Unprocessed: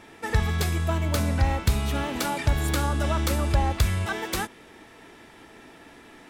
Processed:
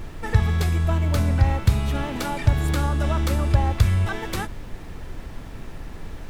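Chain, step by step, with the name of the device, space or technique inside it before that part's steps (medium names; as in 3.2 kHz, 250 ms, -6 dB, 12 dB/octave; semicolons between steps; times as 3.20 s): car interior (peaking EQ 110 Hz +9 dB 0.9 oct; treble shelf 4.3 kHz -5 dB; brown noise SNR 11 dB)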